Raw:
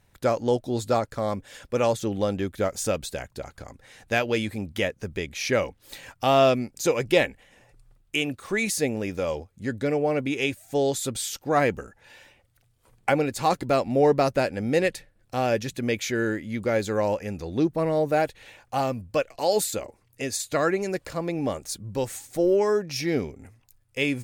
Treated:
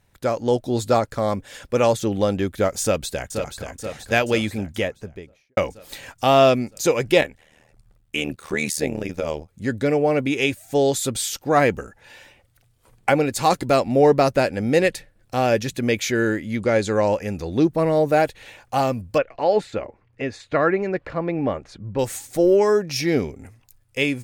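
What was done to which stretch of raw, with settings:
0:02.82–0:03.65: delay throw 480 ms, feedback 65%, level −7 dB
0:04.50–0:05.57: fade out and dull
0:07.21–0:09.49: amplitude modulation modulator 77 Hz, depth 80%
0:13.33–0:13.80: parametric band 9,100 Hz +3.5 dB 2.2 octaves
0:16.57–0:17.14: low-pass filter 9,900 Hz 24 dB per octave
0:19.18–0:21.99: Chebyshev low-pass filter 2,000 Hz
whole clip: automatic gain control gain up to 5 dB

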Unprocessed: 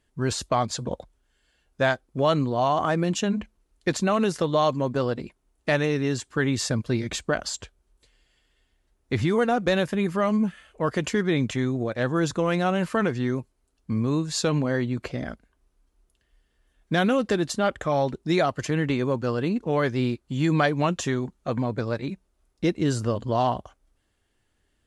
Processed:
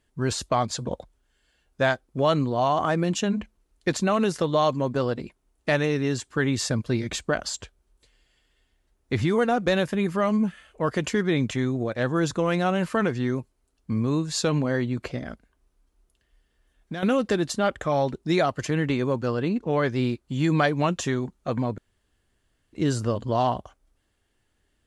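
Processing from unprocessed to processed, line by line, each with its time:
0:15.18–0:17.03: downward compressor, threshold −29 dBFS
0:19.28–0:19.92: high-shelf EQ 8,800 Hz −9 dB
0:21.78–0:22.73: fill with room tone

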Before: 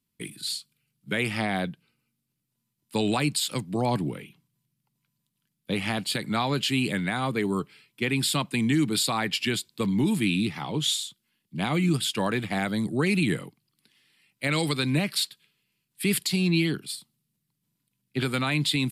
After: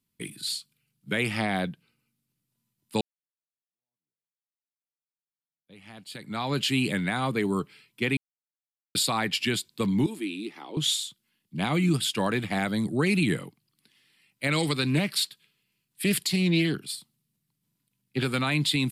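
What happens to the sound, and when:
0:03.01–0:06.58: fade in exponential
0:08.17–0:08.95: silence
0:10.06–0:10.77: four-pole ladder high-pass 280 Hz, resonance 50%
0:14.60–0:18.36: highs frequency-modulated by the lows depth 0.15 ms

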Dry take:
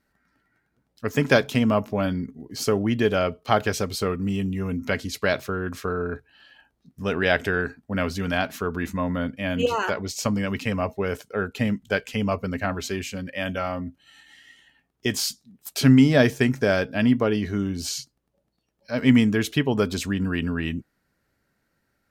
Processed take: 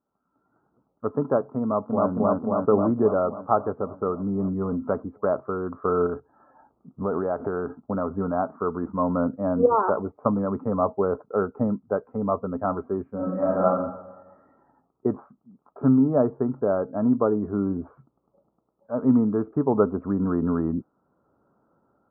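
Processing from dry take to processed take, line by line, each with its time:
0:01.62–0:02.11: delay throw 270 ms, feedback 70%, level −1.5 dB
0:06.06–0:08.14: downward compressor 4 to 1, threshold −29 dBFS
0:13.15–0:13.63: thrown reverb, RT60 1 s, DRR −7 dB
whole clip: high-pass filter 310 Hz 6 dB per octave; automatic gain control gain up to 16.5 dB; Chebyshev low-pass filter 1,300 Hz, order 6; level −4 dB

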